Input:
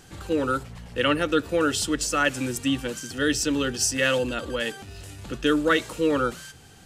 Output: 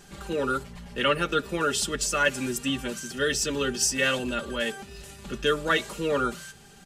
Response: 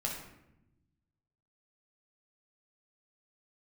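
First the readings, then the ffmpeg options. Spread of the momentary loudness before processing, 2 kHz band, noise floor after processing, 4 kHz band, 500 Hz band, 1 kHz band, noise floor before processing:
12 LU, −0.5 dB, −51 dBFS, −0.5 dB, −2.5 dB, −1.0 dB, −49 dBFS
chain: -af "aecho=1:1:5:0.78,volume=-2.5dB"

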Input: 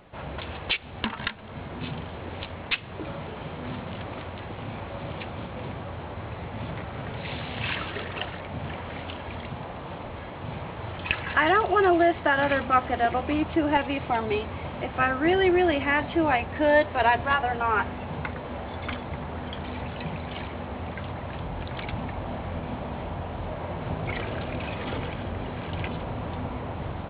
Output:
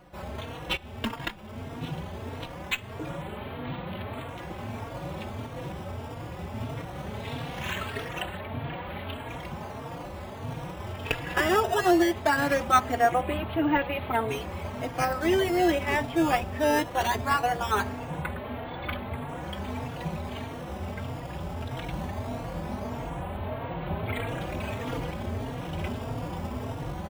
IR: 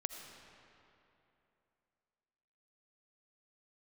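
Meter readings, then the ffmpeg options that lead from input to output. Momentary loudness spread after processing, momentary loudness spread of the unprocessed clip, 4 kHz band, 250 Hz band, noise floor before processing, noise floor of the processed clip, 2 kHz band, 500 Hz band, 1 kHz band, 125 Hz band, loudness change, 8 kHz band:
14 LU, 15 LU, −2.0 dB, −1.0 dB, −39 dBFS, −40 dBFS, −3.5 dB, −2.0 dB, −1.5 dB, −0.5 dB, −2.0 dB, can't be measured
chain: -filter_complex "[0:a]asplit=2[link_01][link_02];[link_02]acrusher=samples=12:mix=1:aa=0.000001:lfo=1:lforange=19.2:lforate=0.2,volume=-5dB[link_03];[link_01][link_03]amix=inputs=2:normalize=0,asplit=2[link_04][link_05];[link_05]adelay=3.7,afreqshift=1.6[link_06];[link_04][link_06]amix=inputs=2:normalize=1,volume=-1.5dB"

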